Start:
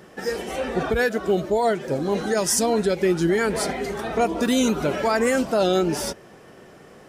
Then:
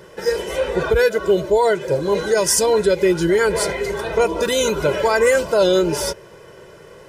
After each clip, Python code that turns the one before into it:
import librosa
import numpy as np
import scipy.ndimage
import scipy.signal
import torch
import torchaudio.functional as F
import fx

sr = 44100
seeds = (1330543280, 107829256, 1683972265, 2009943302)

y = x + 0.79 * np.pad(x, (int(2.0 * sr / 1000.0), 0))[:len(x)]
y = y * 10.0 ** (2.5 / 20.0)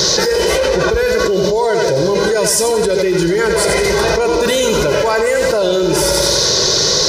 y = fx.dmg_noise_band(x, sr, seeds[0], low_hz=3700.0, high_hz=6300.0, level_db=-38.0)
y = fx.echo_feedback(y, sr, ms=89, feedback_pct=46, wet_db=-8.0)
y = fx.env_flatten(y, sr, amount_pct=100)
y = y * 10.0 ** (-2.5 / 20.0)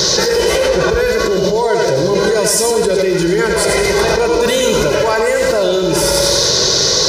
y = x + 10.0 ** (-8.5 / 20.0) * np.pad(x, (int(112 * sr / 1000.0), 0))[:len(x)]